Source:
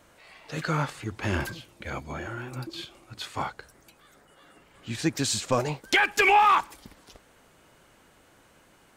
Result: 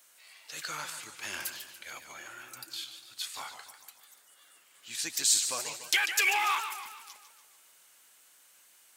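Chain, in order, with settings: differentiator; modulated delay 145 ms, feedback 51%, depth 147 cents, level -9.5 dB; trim +5.5 dB

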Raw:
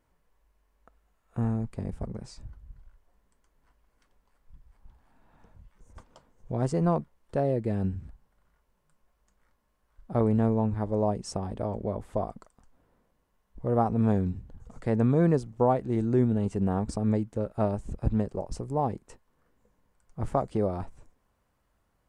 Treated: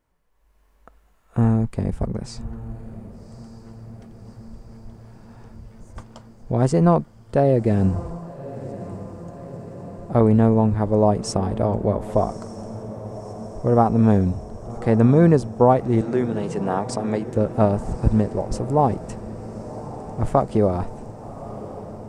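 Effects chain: 16.01–17.27 s: frequency weighting A; level rider gain up to 11.5 dB; echo that smears into a reverb 1152 ms, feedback 69%, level -15.5 dB; trim -1 dB

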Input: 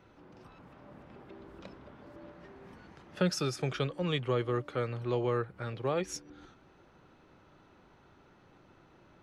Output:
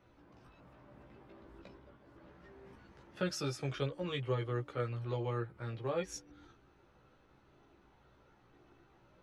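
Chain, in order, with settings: 1.62–2.24 s: expander -48 dBFS; chorus voices 6, 0.24 Hz, delay 16 ms, depth 1.9 ms; trim -2.5 dB

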